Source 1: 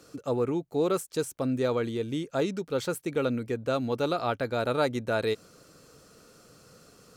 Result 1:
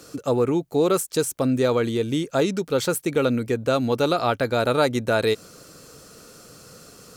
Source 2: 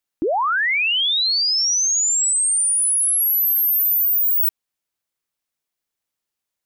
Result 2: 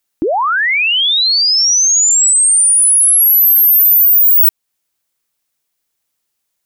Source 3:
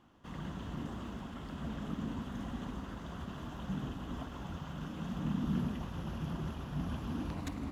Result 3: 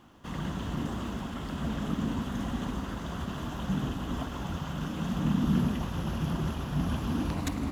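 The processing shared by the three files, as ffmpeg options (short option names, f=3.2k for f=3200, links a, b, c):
-filter_complex "[0:a]highshelf=f=5.3k:g=5.5,asplit=2[a][b];[b]acompressor=threshold=-26dB:ratio=6,volume=-3dB[c];[a][c]amix=inputs=2:normalize=0,volume=3dB"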